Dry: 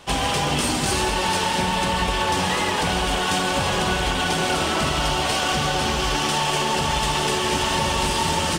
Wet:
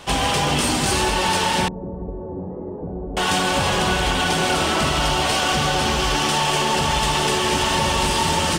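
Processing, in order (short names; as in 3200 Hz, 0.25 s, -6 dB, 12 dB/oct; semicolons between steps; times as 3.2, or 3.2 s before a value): in parallel at -2 dB: limiter -22.5 dBFS, peak gain reduction 11 dB; 1.68–3.17 on the sum: ladder low-pass 550 Hz, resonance 30%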